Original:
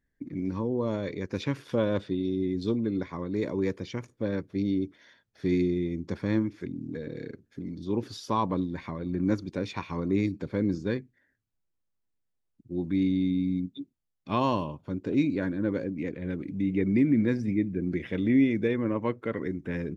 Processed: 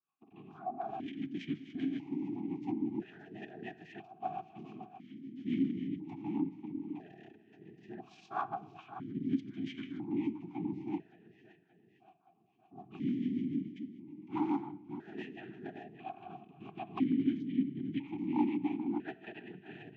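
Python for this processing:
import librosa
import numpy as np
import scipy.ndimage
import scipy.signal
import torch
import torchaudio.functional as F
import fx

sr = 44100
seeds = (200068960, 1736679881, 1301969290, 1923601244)

p1 = fx.rider(x, sr, range_db=3, speed_s=0.5)
p2 = x + (p1 * librosa.db_to_amplitude(-1.0))
p3 = fx.noise_vocoder(p2, sr, seeds[0], bands=6)
p4 = p3 + fx.echo_feedback(p3, sr, ms=573, feedback_pct=52, wet_db=-14.5, dry=0)
p5 = 10.0 ** (-12.0 / 20.0) * (np.abs((p4 / 10.0 ** (-12.0 / 20.0) + 3.0) % 4.0 - 2.0) - 1.0)
p6 = scipy.signal.sosfilt(scipy.signal.cheby1(2, 1.0, [360.0, 770.0], 'bandstop', fs=sr, output='sos'), p5)
p7 = fx.formant_shift(p6, sr, semitones=-3)
p8 = fx.rotary(p7, sr, hz=7.0)
p9 = fx.room_shoebox(p8, sr, seeds[1], volume_m3=2700.0, walls='furnished', distance_m=0.6)
y = fx.vowel_held(p9, sr, hz=1.0)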